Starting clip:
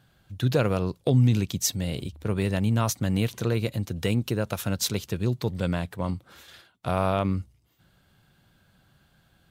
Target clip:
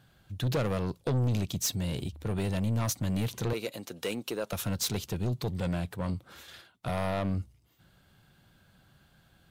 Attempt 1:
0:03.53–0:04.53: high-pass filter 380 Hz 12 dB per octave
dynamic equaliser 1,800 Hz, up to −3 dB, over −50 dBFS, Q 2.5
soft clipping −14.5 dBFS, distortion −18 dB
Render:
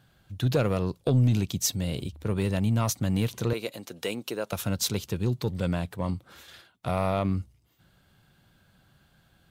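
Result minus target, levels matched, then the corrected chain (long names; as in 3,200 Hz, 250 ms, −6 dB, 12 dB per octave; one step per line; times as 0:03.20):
soft clipping: distortion −11 dB
0:03.53–0:04.53: high-pass filter 380 Hz 12 dB per octave
dynamic equaliser 1,800 Hz, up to −3 dB, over −50 dBFS, Q 2.5
soft clipping −24.5 dBFS, distortion −8 dB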